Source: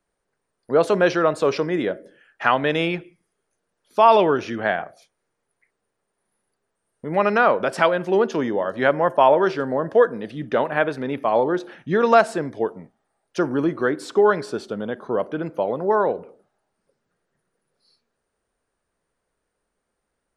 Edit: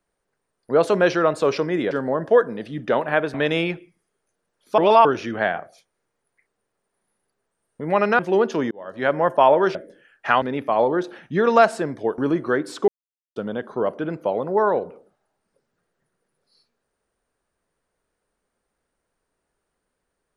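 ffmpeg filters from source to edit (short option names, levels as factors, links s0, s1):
-filter_complex "[0:a]asplit=12[s0][s1][s2][s3][s4][s5][s6][s7][s8][s9][s10][s11];[s0]atrim=end=1.912[s12];[s1]atrim=start=9.548:end=10.982[s13];[s2]atrim=start=2.578:end=4.022[s14];[s3]atrim=start=4.018:end=4.292,asetpts=PTS-STARTPTS,areverse[s15];[s4]atrim=start=4.288:end=7.432[s16];[s5]atrim=start=7.988:end=8.51,asetpts=PTS-STARTPTS,afade=t=out:st=0.518:d=0.004:c=hsin[s17];[s6]atrim=start=8.51:end=9.552,asetpts=PTS-STARTPTS,afade=t=in:d=0.49[s18];[s7]atrim=start=1.908:end=2.582[s19];[s8]atrim=start=10.978:end=12.742[s20];[s9]atrim=start=13.508:end=14.21,asetpts=PTS-STARTPTS,afade=t=out:st=0.698:d=0.004:c=hsin[s21];[s10]atrim=start=14.21:end=14.69,asetpts=PTS-STARTPTS,volume=0[s22];[s11]atrim=start=14.69,asetpts=PTS-STARTPTS,afade=t=in:d=0.004:c=hsin[s23];[s12][s13]acrossfade=d=0.004:c1=hsin:c2=hsin[s24];[s24][s14]acrossfade=d=0.004:c1=hsin:c2=hsin[s25];[s25][s15]acrossfade=d=0.004:c1=hsin:c2=hsin[s26];[s26][s16]acrossfade=d=0.004:c1=hsin:c2=hsin[s27];[s17][s18]concat=n=2:v=0:a=1[s28];[s27][s28]acrossfade=d=0.004:c1=hsin:c2=hsin[s29];[s29][s19]acrossfade=d=0.004:c1=hsin:c2=hsin[s30];[s30][s20]acrossfade=d=0.004:c1=hsin:c2=hsin[s31];[s21][s22][s23]concat=n=3:v=0:a=1[s32];[s31][s32]acrossfade=d=0.004:c1=hsin:c2=hsin"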